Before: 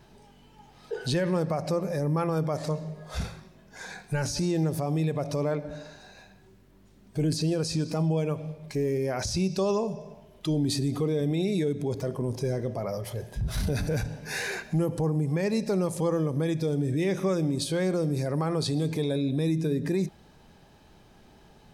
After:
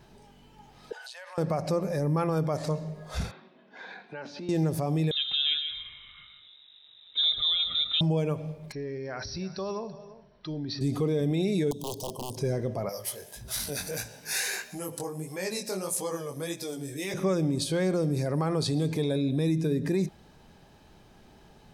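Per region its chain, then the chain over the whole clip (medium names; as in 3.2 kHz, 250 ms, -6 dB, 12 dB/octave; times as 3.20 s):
0.92–1.38 s: steep high-pass 650 Hz 48 dB/octave + compression 5:1, threshold -41 dBFS
3.31–4.49 s: Chebyshev band-pass 230–3600 Hz, order 3 + compression 2:1, threshold -40 dBFS
5.11–8.01 s: delay 152 ms -9.5 dB + frequency inversion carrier 3.8 kHz
8.72–10.81 s: rippled Chebyshev low-pass 5.8 kHz, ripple 9 dB + delay 333 ms -17.5 dB
11.71–12.37 s: tilt EQ +2.5 dB/octave + integer overflow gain 26 dB + elliptic band-stop 1–3 kHz
12.89–17.14 s: RIAA curve recording + chorus 1.6 Hz, delay 15.5 ms, depth 6.8 ms
whole clip: none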